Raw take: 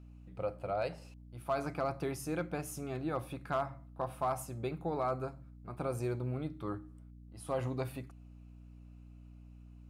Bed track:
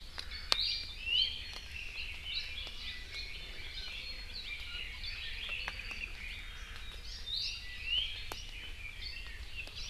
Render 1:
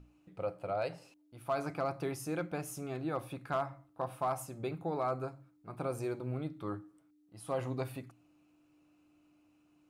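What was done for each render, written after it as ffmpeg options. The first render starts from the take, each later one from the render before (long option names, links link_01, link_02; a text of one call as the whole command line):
ffmpeg -i in.wav -af "bandreject=frequency=60:width_type=h:width=6,bandreject=frequency=120:width_type=h:width=6,bandreject=frequency=180:width_type=h:width=6,bandreject=frequency=240:width_type=h:width=6" out.wav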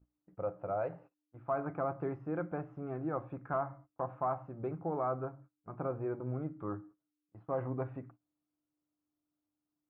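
ffmpeg -i in.wav -af "lowpass=frequency=1600:width=0.5412,lowpass=frequency=1600:width=1.3066,agate=range=-21dB:threshold=-55dB:ratio=16:detection=peak" out.wav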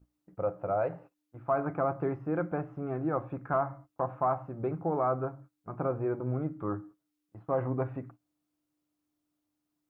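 ffmpeg -i in.wav -af "volume=5.5dB" out.wav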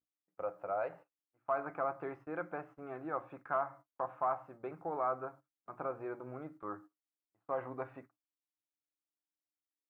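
ffmpeg -i in.wav -af "highpass=frequency=1200:poles=1,agate=range=-17dB:threshold=-53dB:ratio=16:detection=peak" out.wav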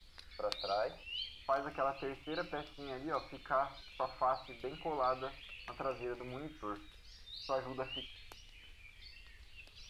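ffmpeg -i in.wav -i bed.wav -filter_complex "[1:a]volume=-11.5dB[link_01];[0:a][link_01]amix=inputs=2:normalize=0" out.wav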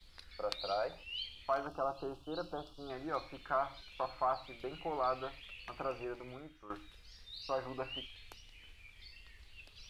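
ffmpeg -i in.wav -filter_complex "[0:a]asettb=1/sr,asplit=3[link_01][link_02][link_03];[link_01]atrim=end=1.674[link_04];[link_02]atrim=start=1.67:end=2.9,asetpts=PTS-STARTPTS,afade=type=in:duration=0.004:curve=qsin,afade=type=out:start_time=1.226:duration=0.004:curve=qsin,asuperstop=centerf=2100:order=4:qfactor=1[link_05];[link_03]atrim=start=2.896[link_06];[link_04][link_05]acrossfade=duration=0.004:curve1=hsin:curve2=qsin[link_07];[link_07][link_06]acrossfade=duration=0.004:curve1=qsin:curve2=hsin,asplit=2[link_08][link_09];[link_08]atrim=end=6.7,asetpts=PTS-STARTPTS,afade=type=out:start_time=6:duration=0.7:silence=0.251189[link_10];[link_09]atrim=start=6.7,asetpts=PTS-STARTPTS,afade=type=in:duration=0.004:curve=hsin:silence=0.251189[link_11];[link_10][link_11]concat=n=2:v=0:a=1" out.wav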